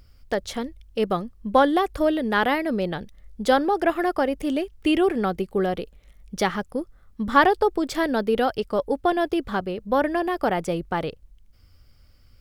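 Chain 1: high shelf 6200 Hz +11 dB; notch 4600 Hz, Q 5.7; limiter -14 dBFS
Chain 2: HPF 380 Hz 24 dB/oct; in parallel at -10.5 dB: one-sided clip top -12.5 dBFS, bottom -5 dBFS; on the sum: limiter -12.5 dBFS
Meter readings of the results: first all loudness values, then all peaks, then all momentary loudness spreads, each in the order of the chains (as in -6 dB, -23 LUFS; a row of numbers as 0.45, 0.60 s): -26.0, -25.5 LUFS; -14.0, -12.5 dBFS; 8, 10 LU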